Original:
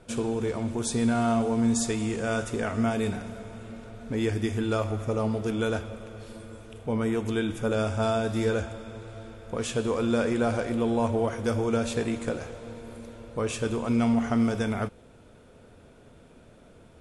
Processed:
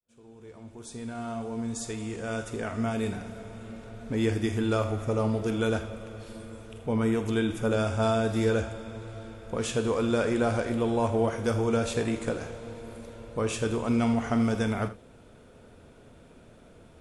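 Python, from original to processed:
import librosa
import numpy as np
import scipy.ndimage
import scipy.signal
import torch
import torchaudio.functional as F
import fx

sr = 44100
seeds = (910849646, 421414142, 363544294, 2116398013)

y = fx.fade_in_head(x, sr, length_s=4.2)
y = fx.room_early_taps(y, sr, ms=(45, 80), db=(-14.5, -15.5))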